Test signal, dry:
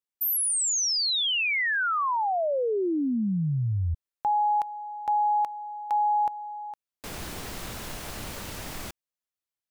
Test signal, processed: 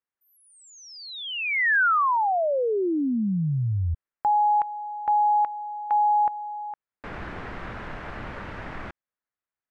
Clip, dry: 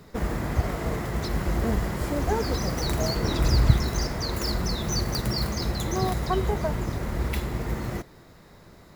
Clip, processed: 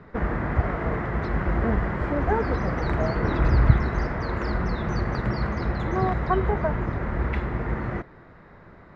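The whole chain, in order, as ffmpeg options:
-af "lowpass=f=1.7k:t=q:w=1.6,volume=1.5dB"

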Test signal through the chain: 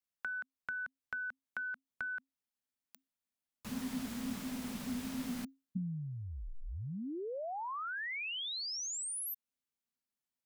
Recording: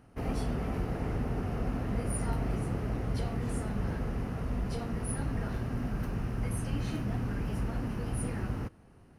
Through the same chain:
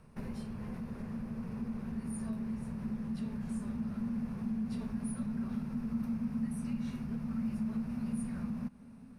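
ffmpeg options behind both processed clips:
-af "acompressor=threshold=-38dB:ratio=10,asubboost=boost=4:cutoff=71,afreqshift=-270"

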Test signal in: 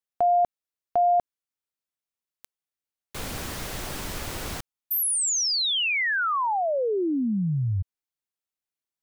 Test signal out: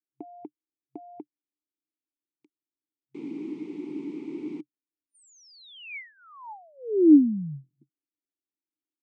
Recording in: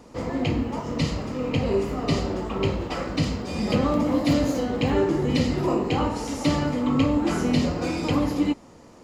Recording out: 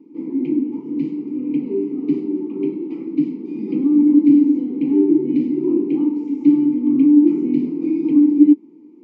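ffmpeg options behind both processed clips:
-filter_complex "[0:a]afftfilt=real='re*between(b*sr/4096,130,9200)':imag='im*between(b*sr/4096,130,9200)':win_size=4096:overlap=0.75,asplit=3[a][b][c];[a]bandpass=f=300:t=q:w=8,volume=0dB[d];[b]bandpass=f=870:t=q:w=8,volume=-6dB[e];[c]bandpass=f=2.24k:t=q:w=8,volume=-9dB[f];[d][e][f]amix=inputs=3:normalize=0,lowshelf=f=550:t=q:w=3:g=11,volume=-1.5dB"

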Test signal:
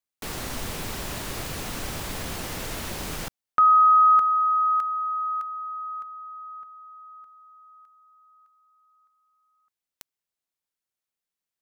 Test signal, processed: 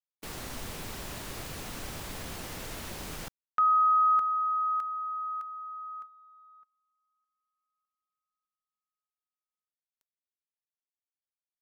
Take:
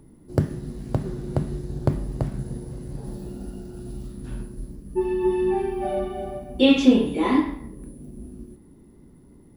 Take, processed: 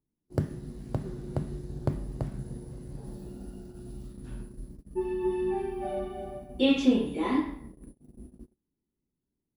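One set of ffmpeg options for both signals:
-af "agate=range=-28dB:threshold=-39dB:ratio=16:release=133:detection=peak,volume=-7dB"

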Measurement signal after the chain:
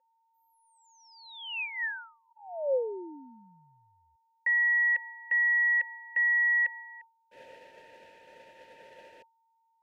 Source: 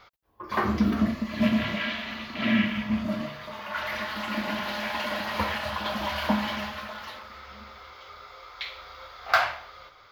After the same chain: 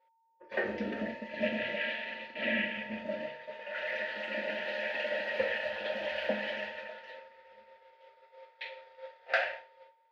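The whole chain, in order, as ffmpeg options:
-filter_complex "[0:a]aeval=exprs='val(0)+0.0282*sin(2*PI*910*n/s)':c=same,asplit=3[a][b][c];[a]bandpass=f=530:t=q:w=8,volume=0dB[d];[b]bandpass=f=1.84k:t=q:w=8,volume=-6dB[e];[c]bandpass=f=2.48k:t=q:w=8,volume=-9dB[f];[d][e][f]amix=inputs=3:normalize=0,agate=range=-33dB:threshold=-47dB:ratio=3:detection=peak,volume=8dB"

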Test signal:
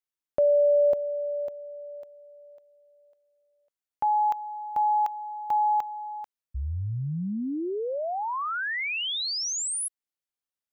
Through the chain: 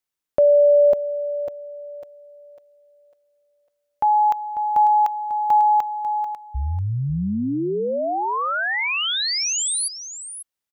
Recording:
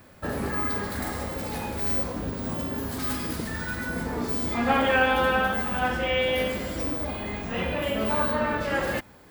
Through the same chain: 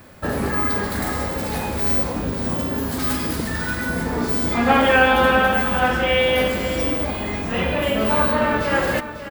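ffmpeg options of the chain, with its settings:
-af "aecho=1:1:545:0.266,volume=6.5dB"

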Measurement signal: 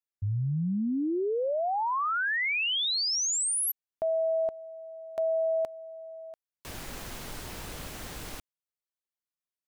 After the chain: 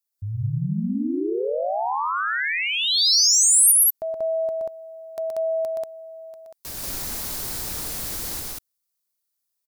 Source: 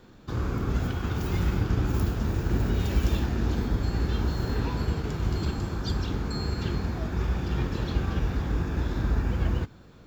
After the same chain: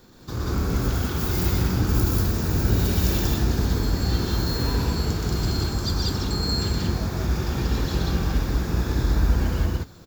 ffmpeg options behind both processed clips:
-af "aexciter=amount=1.9:drive=8.3:freq=4.1k,aecho=1:1:122.4|186.6:0.708|1"

